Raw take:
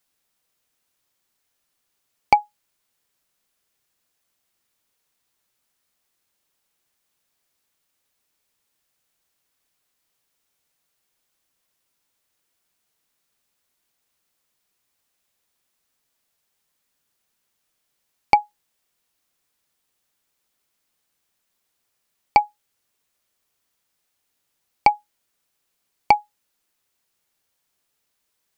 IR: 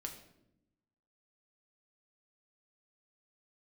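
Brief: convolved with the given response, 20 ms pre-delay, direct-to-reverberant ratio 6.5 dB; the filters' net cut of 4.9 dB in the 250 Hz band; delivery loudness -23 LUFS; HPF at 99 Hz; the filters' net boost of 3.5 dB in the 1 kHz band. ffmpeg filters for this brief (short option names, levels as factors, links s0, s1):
-filter_complex "[0:a]highpass=99,equalizer=f=250:t=o:g=-7,equalizer=f=1000:t=o:g=5,asplit=2[s0][s1];[1:a]atrim=start_sample=2205,adelay=20[s2];[s1][s2]afir=irnorm=-1:irlink=0,volume=0.631[s3];[s0][s3]amix=inputs=2:normalize=0,volume=0.562"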